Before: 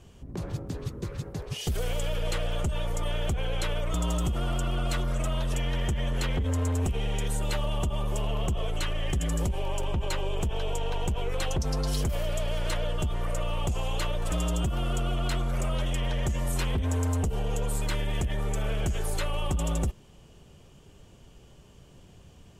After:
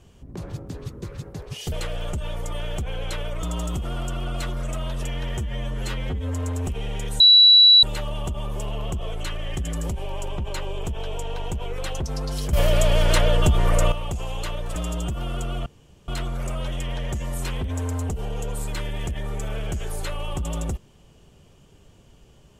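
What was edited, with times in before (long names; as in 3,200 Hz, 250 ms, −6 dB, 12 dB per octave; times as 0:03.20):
0:01.72–0:02.23: remove
0:05.89–0:06.53: time-stretch 1.5×
0:07.39: insert tone 3,930 Hz −8.5 dBFS 0.63 s
0:12.09–0:13.48: clip gain +11 dB
0:15.22: splice in room tone 0.42 s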